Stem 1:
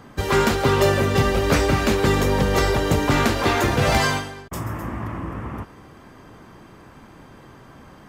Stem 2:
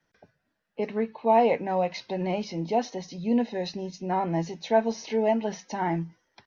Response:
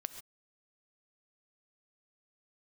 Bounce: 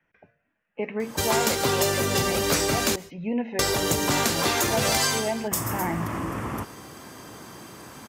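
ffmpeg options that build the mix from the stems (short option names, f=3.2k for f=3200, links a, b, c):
-filter_complex "[0:a]highpass=83,bass=f=250:g=-3,treble=f=4k:g=14,bandreject=f=410.1:t=h:w=4,bandreject=f=820.2:t=h:w=4,bandreject=f=1.2303k:t=h:w=4,bandreject=f=1.6404k:t=h:w=4,bandreject=f=2.0505k:t=h:w=4,bandreject=f=2.4606k:t=h:w=4,bandreject=f=2.8707k:t=h:w=4,bandreject=f=3.2808k:t=h:w=4,bandreject=f=3.6909k:t=h:w=4,bandreject=f=4.101k:t=h:w=4,bandreject=f=4.5111k:t=h:w=4,bandreject=f=4.9212k:t=h:w=4,bandreject=f=5.3313k:t=h:w=4,bandreject=f=5.7414k:t=h:w=4,bandreject=f=6.1515k:t=h:w=4,bandreject=f=6.5616k:t=h:w=4,bandreject=f=6.9717k:t=h:w=4,bandreject=f=7.3818k:t=h:w=4,bandreject=f=7.7919k:t=h:w=4,bandreject=f=8.202k:t=h:w=4,bandreject=f=8.6121k:t=h:w=4,bandreject=f=9.0222k:t=h:w=4,bandreject=f=9.4323k:t=h:w=4,bandreject=f=9.8424k:t=h:w=4,bandreject=f=10.2525k:t=h:w=4,bandreject=f=10.6626k:t=h:w=4,bandreject=f=11.0727k:t=h:w=4,bandreject=f=11.4828k:t=h:w=4,bandreject=f=11.8929k:t=h:w=4,bandreject=f=12.303k:t=h:w=4,bandreject=f=12.7131k:t=h:w=4,bandreject=f=13.1232k:t=h:w=4,bandreject=f=13.5333k:t=h:w=4,bandreject=f=13.9434k:t=h:w=4,bandreject=f=14.3535k:t=h:w=4,bandreject=f=14.7636k:t=h:w=4,bandreject=f=15.1737k:t=h:w=4,bandreject=f=15.5838k:t=h:w=4,bandreject=f=15.9939k:t=h:w=4,adelay=1000,volume=1.5dB,asplit=3[a][b][c];[a]atrim=end=2.96,asetpts=PTS-STARTPTS,afade=t=out:st=2.956:d=0.004:c=hsin[d];[b]atrim=start=2.96:end=3.59,asetpts=PTS-STARTPTS,volume=0[e];[c]atrim=start=3.59,asetpts=PTS-STARTPTS,afade=t=in:d=0.004:c=hsin[f];[d][e][f]concat=n=3:v=0:a=1,asplit=2[g][h];[h]volume=-13.5dB[i];[1:a]highshelf=f=3.3k:t=q:w=3:g=-10,bandreject=f=115.7:t=h:w=4,bandreject=f=231.4:t=h:w=4,bandreject=f=347.1:t=h:w=4,bandreject=f=462.8:t=h:w=4,bandreject=f=578.5:t=h:w=4,bandreject=f=694.2:t=h:w=4,volume=0.5dB[j];[2:a]atrim=start_sample=2205[k];[i][k]afir=irnorm=-1:irlink=0[l];[g][j][l]amix=inputs=3:normalize=0,acompressor=threshold=-24dB:ratio=2.5"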